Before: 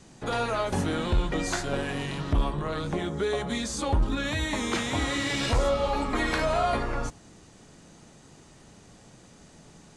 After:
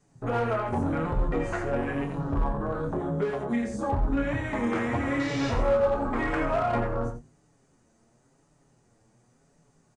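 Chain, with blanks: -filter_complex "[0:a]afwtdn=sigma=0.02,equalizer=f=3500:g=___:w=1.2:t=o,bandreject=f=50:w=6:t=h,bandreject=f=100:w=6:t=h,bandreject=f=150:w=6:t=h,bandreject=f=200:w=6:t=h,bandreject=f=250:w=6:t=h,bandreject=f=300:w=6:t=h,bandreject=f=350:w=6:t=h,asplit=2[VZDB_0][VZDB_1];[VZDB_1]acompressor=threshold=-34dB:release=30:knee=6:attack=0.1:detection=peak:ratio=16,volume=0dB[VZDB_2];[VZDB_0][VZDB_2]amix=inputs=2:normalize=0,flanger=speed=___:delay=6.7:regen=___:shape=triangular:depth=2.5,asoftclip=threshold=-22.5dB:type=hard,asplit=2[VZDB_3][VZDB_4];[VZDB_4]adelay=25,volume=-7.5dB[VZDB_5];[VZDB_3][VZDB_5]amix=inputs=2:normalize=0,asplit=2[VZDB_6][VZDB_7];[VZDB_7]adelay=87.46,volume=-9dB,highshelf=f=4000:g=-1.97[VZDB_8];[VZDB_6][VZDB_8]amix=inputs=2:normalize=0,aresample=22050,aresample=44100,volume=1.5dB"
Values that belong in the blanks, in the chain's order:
-10.5, 0.94, -2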